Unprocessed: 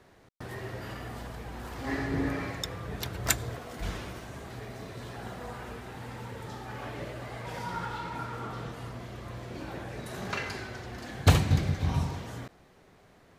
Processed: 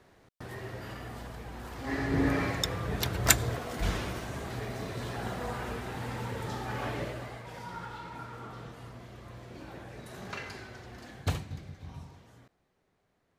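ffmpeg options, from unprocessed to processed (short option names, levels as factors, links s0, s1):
-af "volume=1.68,afade=t=in:st=1.88:d=0.5:silence=0.473151,afade=t=out:st=6.9:d=0.54:silence=0.298538,afade=t=out:st=11.04:d=0.44:silence=0.298538"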